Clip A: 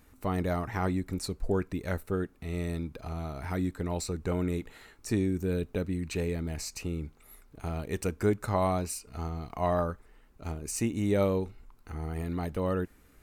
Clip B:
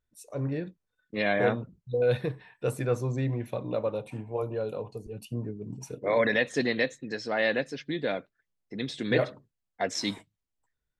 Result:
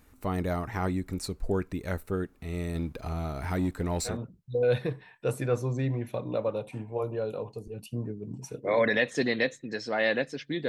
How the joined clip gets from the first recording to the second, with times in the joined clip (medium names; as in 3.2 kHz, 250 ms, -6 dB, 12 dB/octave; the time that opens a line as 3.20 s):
clip A
2.75–4.22 s: waveshaping leveller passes 1
4.13 s: go over to clip B from 1.52 s, crossfade 0.18 s